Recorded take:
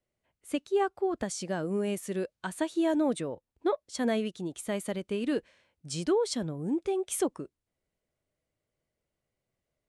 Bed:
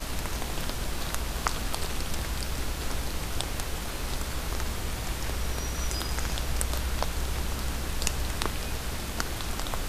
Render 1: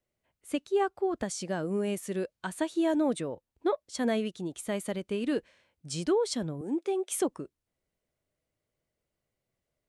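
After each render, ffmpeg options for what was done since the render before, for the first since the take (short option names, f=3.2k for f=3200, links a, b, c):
-filter_complex "[0:a]asettb=1/sr,asplit=3[a][b][c];[a]atrim=end=6.614[d];[b]atrim=start=6.61:end=7.22,asetpts=PTS-STARTPTS,afade=t=in:d=0.004:c=qsin,afade=t=out:st=0.606:d=0.004:c=qsin,highpass=f=250:w=0.5412,highpass=f=250:w=1.3066[e];[c]atrim=start=7.216[f];[d][e]acrossfade=d=0.004:c1=hsin:c2=qsin[g];[g][f]acrossfade=d=0.004:c1=qsin:c2=hsin"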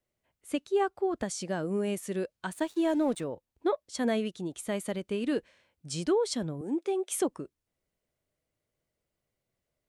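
-filter_complex "[0:a]asettb=1/sr,asplit=3[a][b][c];[a]atrim=end=2.534[d];[b]atrim=start=2.53:end=3.24,asetpts=PTS-STARTPTS,afade=t=in:d=0.004:c=qsin,afade=t=out:st=0.706:d=0.004:c=qsin,aeval=exprs='sgn(val(0))*max(abs(val(0))-0.00316,0)':c=same[e];[c]atrim=start=3.236[f];[d][e]acrossfade=d=0.004:c1=hsin:c2=qsin[g];[g][f]acrossfade=d=0.004:c1=qsin:c2=hsin"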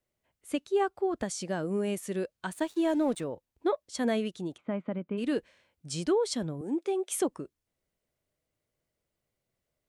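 -filter_complex "[0:a]asplit=3[a][b][c];[a]afade=t=out:st=4.56:d=0.02[d];[b]highpass=140,equalizer=f=170:t=q:w=4:g=4,equalizer=f=260:t=q:w=4:g=6,equalizer=f=400:t=q:w=4:g=-5,equalizer=f=710:t=q:w=4:g=-3,equalizer=f=1.8k:t=q:w=4:g=-8,lowpass=f=2.1k:w=0.5412,lowpass=f=2.1k:w=1.3066,afade=t=in:st=4.56:d=0.02,afade=t=out:st=5.17:d=0.02[e];[c]afade=t=in:st=5.17:d=0.02[f];[d][e][f]amix=inputs=3:normalize=0"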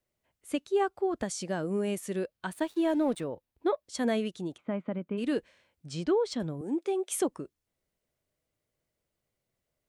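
-filter_complex "[0:a]asettb=1/sr,asplit=3[a][b][c];[a]atrim=end=2.194[d];[b]atrim=start=2.19:end=3.85,asetpts=PTS-STARTPTS,afade=t=in:d=0.004:c=qsin,afade=t=out:st=1.656:d=0.004:c=qsin,equalizer=f=7k:t=o:w=0.77:g=-5.5[e];[c]atrim=start=3.846[f];[d][e]acrossfade=d=0.004:c1=hsin:c2=qsin[g];[g][f]acrossfade=d=0.004:c1=qsin:c2=hsin,asettb=1/sr,asplit=3[h][i][j];[h]atrim=end=5.874[k];[i]atrim=start=5.87:end=6.4,asetpts=PTS-STARTPTS,afade=t=in:d=0.004:c=qsin,afade=t=out:st=0.526:d=0.004:c=qsin,adynamicsmooth=sensitivity=1:basefreq=4.9k[l];[j]atrim=start=6.396[m];[k][l]acrossfade=d=0.004:c1=hsin:c2=qsin[n];[n][m]acrossfade=d=0.004:c1=qsin:c2=hsin"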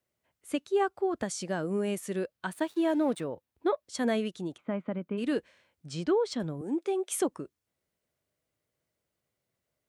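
-af "highpass=67,equalizer=f=1.4k:w=1.5:g=2"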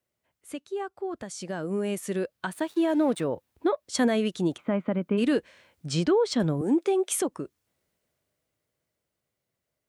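-af "alimiter=level_in=1.5dB:limit=-24dB:level=0:latency=1:release=349,volume=-1.5dB,dynaudnorm=f=220:g=21:m=10dB"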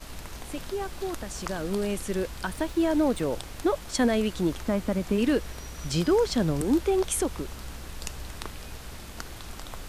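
-filter_complex "[1:a]volume=-8dB[a];[0:a][a]amix=inputs=2:normalize=0"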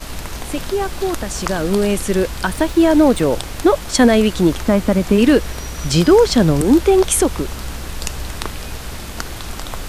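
-af "volume=12dB,alimiter=limit=-2dB:level=0:latency=1"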